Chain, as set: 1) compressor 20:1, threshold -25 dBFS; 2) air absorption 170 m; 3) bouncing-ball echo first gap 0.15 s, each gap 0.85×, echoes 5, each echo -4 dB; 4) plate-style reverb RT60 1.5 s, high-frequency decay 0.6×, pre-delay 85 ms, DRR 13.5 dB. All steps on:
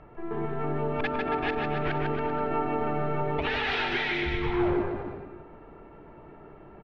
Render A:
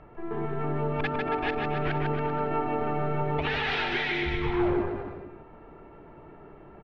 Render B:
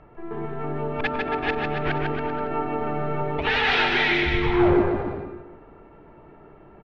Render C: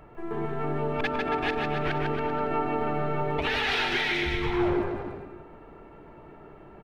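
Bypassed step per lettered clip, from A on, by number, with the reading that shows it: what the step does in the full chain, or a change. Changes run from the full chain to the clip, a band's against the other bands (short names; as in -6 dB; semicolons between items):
4, momentary loudness spread change -2 LU; 1, mean gain reduction 2.5 dB; 2, 4 kHz band +3.5 dB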